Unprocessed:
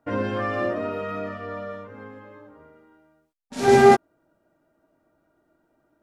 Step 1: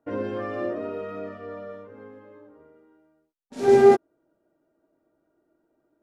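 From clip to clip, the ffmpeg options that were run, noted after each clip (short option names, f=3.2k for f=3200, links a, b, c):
-af "equalizer=f=390:w=1.1:g=9.5,volume=-9dB"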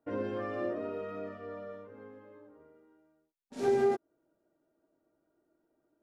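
-af "acompressor=threshold=-19dB:ratio=5,volume=-5.5dB"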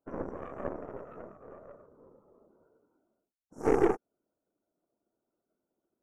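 -af "afftfilt=real='re*(1-between(b*sr/4096,1500,5400))':imag='im*(1-between(b*sr/4096,1500,5400))':win_size=4096:overlap=0.75,afftfilt=real='hypot(re,im)*cos(2*PI*random(0))':imag='hypot(re,im)*sin(2*PI*random(1))':win_size=512:overlap=0.75,aeval=exprs='0.106*(cos(1*acos(clip(val(0)/0.106,-1,1)))-cos(1*PI/2))+0.0075*(cos(5*acos(clip(val(0)/0.106,-1,1)))-cos(5*PI/2))+0.0106*(cos(6*acos(clip(val(0)/0.106,-1,1)))-cos(6*PI/2))+0.015*(cos(7*acos(clip(val(0)/0.106,-1,1)))-cos(7*PI/2))':c=same,volume=6.5dB"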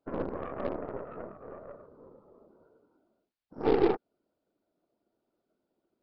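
-filter_complex "[0:a]asplit=2[a][b];[b]aeval=exprs='0.0422*(abs(mod(val(0)/0.0422+3,4)-2)-1)':c=same,volume=-4dB[c];[a][c]amix=inputs=2:normalize=0,aresample=11025,aresample=44100"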